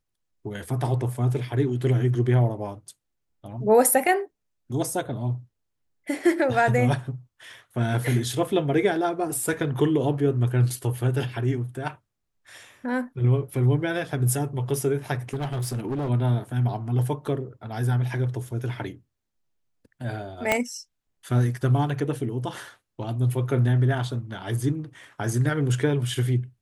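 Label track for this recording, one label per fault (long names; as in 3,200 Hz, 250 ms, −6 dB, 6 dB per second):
15.290000	16.100000	clipping −24.5 dBFS
20.520000	20.520000	click −7 dBFS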